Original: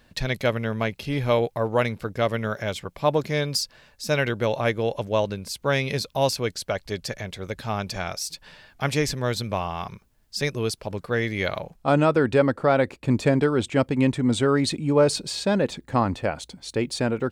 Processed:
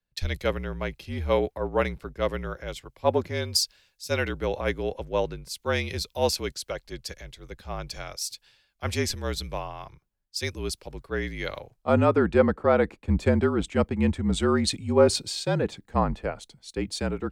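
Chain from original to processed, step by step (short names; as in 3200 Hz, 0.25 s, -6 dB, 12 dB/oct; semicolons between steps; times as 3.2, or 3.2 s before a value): frequency shift -46 Hz; three-band expander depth 70%; gain -3.5 dB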